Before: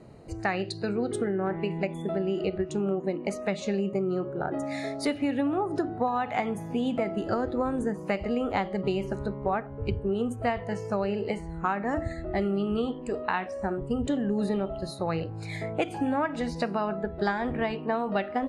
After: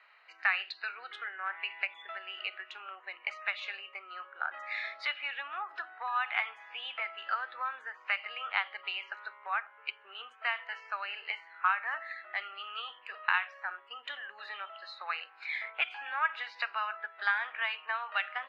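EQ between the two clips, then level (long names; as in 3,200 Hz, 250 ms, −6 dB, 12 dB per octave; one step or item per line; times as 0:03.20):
high-pass filter 1,400 Hz 24 dB per octave
low-pass filter 3,000 Hz 24 dB per octave
dynamic equaliser 1,900 Hz, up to −5 dB, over −50 dBFS, Q 3.3
+8.5 dB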